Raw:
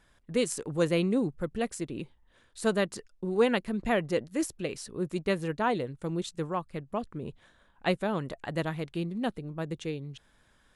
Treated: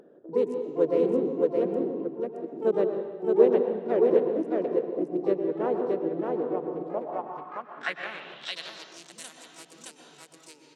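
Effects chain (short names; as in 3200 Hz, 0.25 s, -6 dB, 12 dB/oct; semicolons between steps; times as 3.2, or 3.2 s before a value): Wiener smoothing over 41 samples; harmoniser -3 st -7 dB, +12 st -12 dB; high shelf 7200 Hz +10.5 dB; echo 0.62 s -3 dB; on a send at -6 dB: reverb RT60 1.0 s, pre-delay 97 ms; on the sum: band-pass sweep 440 Hz -> 7800 Hz, 6.77–9.15; HPF 180 Hz 24 dB/oct; in parallel at -1.5 dB: upward compressor, threshold -33 dBFS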